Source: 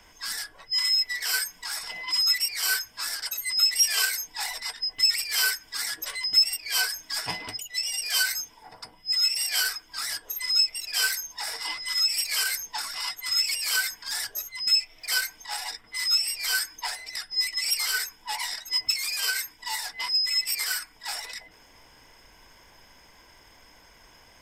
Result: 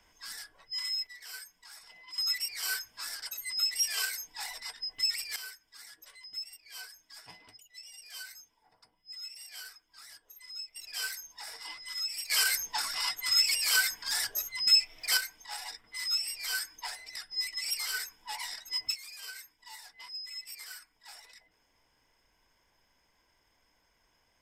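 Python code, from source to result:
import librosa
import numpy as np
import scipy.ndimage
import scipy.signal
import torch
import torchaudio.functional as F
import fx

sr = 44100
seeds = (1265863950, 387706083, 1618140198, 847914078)

y = fx.gain(x, sr, db=fx.steps((0.0, -10.5), (1.07, -18.0), (2.18, -8.0), (5.36, -20.0), (10.76, -11.0), (12.3, -0.5), (15.17, -7.5), (18.95, -17.0)))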